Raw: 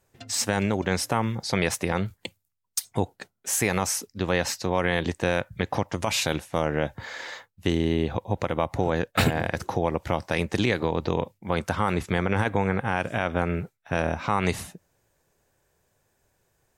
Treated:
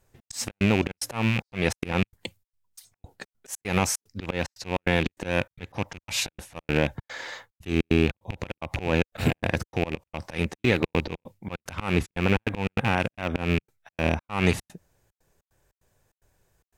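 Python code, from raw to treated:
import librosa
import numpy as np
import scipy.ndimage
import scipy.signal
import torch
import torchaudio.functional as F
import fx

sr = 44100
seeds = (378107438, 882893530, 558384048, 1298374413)

y = fx.rattle_buzz(x, sr, strikes_db=-29.0, level_db=-16.0)
y = fx.auto_swell(y, sr, attack_ms=154.0)
y = fx.dynamic_eq(y, sr, hz=280.0, q=0.86, threshold_db=-37.0, ratio=4.0, max_db=4)
y = fx.step_gate(y, sr, bpm=148, pattern='xx.xx.xxx.xxxx.', floor_db=-60.0, edge_ms=4.5)
y = fx.low_shelf(y, sr, hz=73.0, db=10.0)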